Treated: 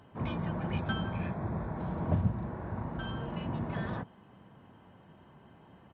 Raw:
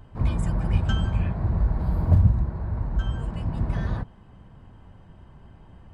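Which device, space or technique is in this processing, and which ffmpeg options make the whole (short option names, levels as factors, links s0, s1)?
Bluetooth headset: -filter_complex "[0:a]asettb=1/sr,asplit=3[s0][s1][s2];[s0]atrim=end=0.794[s3];[s1]atrim=start=0.79:end=1.77,asetpts=PTS-STARTPTS,afade=t=in:d=0.004:c=qsin,afade=t=out:st=0.976:d=0.004:c=qsin,bandreject=f=2900:w=5.7[s4];[s2]atrim=start=1.766[s5];[s3][s4]acrossfade=d=0.004:c1=hsin:c2=qsin[s6];[s6][s5]acrossfade=d=0.004:c1=qsin:c2=hsin,asettb=1/sr,asplit=3[s7][s8][s9];[s7]atrim=end=2.384[s10];[s8]atrim=start=2.38:end=3.57,asetpts=PTS-STARTPTS,afade=t=in:d=0.004:c=qsin,afade=t=out:st=1.186:d=0.004:c=qsin,asplit=2[s11][s12];[s12]adelay=43,volume=0.75[s13];[s11][s13]amix=inputs=2:normalize=0,atrim=end_sample=52479[s14];[s9]atrim=start=3.566[s15];[s10][s14]acrossfade=d=0.004:c1=hsin:c2=qsin[s16];[s16][s15]acrossfade=d=0.004:c1=qsin:c2=hsin,highpass=180,aresample=8000,aresample=44100,volume=0.841" -ar 32000 -c:a sbc -b:a 64k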